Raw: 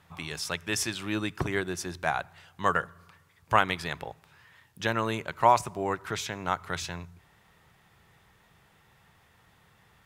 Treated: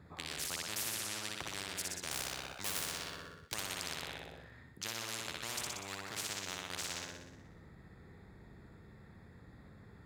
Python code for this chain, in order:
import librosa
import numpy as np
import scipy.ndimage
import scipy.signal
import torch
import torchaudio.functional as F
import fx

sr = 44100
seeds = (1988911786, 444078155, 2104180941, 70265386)

p1 = fx.wiener(x, sr, points=15)
p2 = fx.leveller(p1, sr, passes=3, at=(2.11, 3.54))
p3 = scipy.signal.sosfilt(scipy.signal.butter(2, 73.0, 'highpass', fs=sr, output='sos'), p2)
p4 = fx.tone_stack(p3, sr, knobs='10-0-1')
p5 = p4 + fx.room_flutter(p4, sr, wall_m=10.5, rt60_s=0.86, dry=0)
p6 = fx.spectral_comp(p5, sr, ratio=10.0)
y = p6 * 10.0 ** (10.0 / 20.0)